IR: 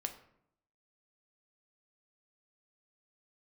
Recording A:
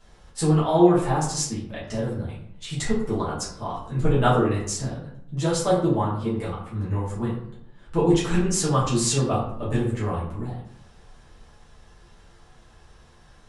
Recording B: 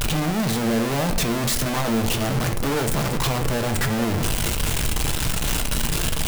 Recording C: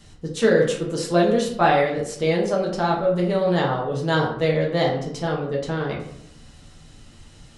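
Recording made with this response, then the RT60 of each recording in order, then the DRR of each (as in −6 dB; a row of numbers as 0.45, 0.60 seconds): B; 0.70, 0.70, 0.70 seconds; −9.5, 5.5, −3.5 decibels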